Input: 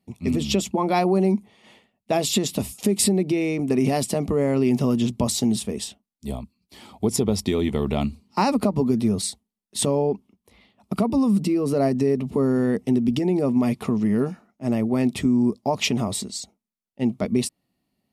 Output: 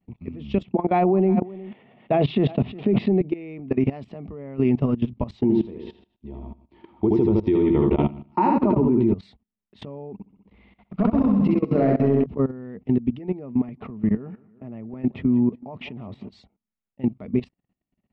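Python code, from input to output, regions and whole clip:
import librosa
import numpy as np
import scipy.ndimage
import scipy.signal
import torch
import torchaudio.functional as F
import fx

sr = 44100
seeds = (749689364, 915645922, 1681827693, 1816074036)

y = fx.chain(x, sr, fx.cabinet(low_hz=110.0, low_slope=24, high_hz=3900.0, hz=(140.0, 250.0, 390.0, 700.0), db=(6, 3, 5, 5)),
    fx.echo_single(ms=359, db=-19.5),
    fx.sustainer(db_per_s=51.0), at=(0.64, 3.21))
y = fx.chain(y, sr, fx.air_absorb(metres=120.0),
    fx.small_body(hz=(340.0, 920.0), ring_ms=90, db=17),
    fx.echo_feedback(ms=76, feedback_pct=29, wet_db=-3.5), at=(5.41, 9.13))
y = fx.chain(y, sr, fx.clip_hard(threshold_db=-14.0),
    fx.room_flutter(wall_m=11.2, rt60_s=1.3), at=(10.13, 12.26))
y = fx.chain(y, sr, fx.highpass(hz=74.0, slope=12),
    fx.high_shelf(hz=3300.0, db=-7.5),
    fx.echo_feedback(ms=184, feedback_pct=58, wet_db=-22.0), at=(13.59, 16.31))
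y = scipy.signal.sosfilt(scipy.signal.butter(4, 2800.0, 'lowpass', fs=sr, output='sos'), y)
y = fx.low_shelf(y, sr, hz=110.0, db=9.5)
y = fx.level_steps(y, sr, step_db=18)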